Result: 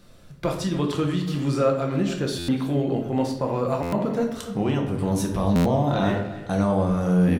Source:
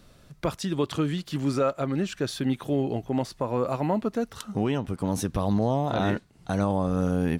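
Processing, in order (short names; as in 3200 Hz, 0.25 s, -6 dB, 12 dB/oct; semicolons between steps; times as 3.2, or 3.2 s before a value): speakerphone echo 0.29 s, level -12 dB; shoebox room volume 150 m³, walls mixed, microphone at 0.83 m; stuck buffer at 2.38/3.82/5.55, samples 512, times 8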